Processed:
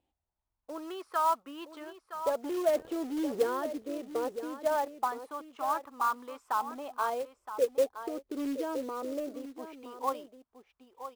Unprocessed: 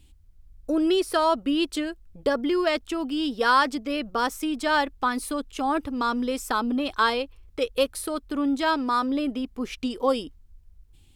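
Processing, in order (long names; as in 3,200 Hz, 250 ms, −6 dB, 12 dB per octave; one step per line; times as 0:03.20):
0:02.44–0:03.60: converter with a step at zero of −25.5 dBFS
LFO wah 0.21 Hz 410–1,100 Hz, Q 3.5
on a send: single-tap delay 968 ms −11 dB
on the sum: floating-point word with a short mantissa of 2 bits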